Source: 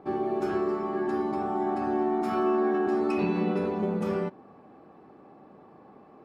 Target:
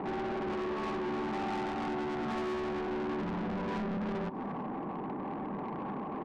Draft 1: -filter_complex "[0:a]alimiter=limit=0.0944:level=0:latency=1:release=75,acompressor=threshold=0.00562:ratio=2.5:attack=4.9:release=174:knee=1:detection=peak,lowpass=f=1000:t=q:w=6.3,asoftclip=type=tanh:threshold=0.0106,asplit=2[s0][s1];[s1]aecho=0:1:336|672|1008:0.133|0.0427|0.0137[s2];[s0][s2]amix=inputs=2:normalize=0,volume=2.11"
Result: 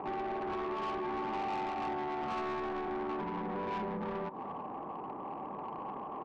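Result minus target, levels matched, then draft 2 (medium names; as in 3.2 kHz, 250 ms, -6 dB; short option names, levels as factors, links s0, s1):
250 Hz band -4.0 dB
-filter_complex "[0:a]alimiter=limit=0.0944:level=0:latency=1:release=75,acompressor=threshold=0.00562:ratio=2.5:attack=4.9:release=174:knee=1:detection=peak,lowpass=f=1000:t=q:w=6.3,equalizer=f=200:w=0.63:g=13.5,asoftclip=type=tanh:threshold=0.0106,asplit=2[s0][s1];[s1]aecho=0:1:336|672|1008:0.133|0.0427|0.0137[s2];[s0][s2]amix=inputs=2:normalize=0,volume=2.11"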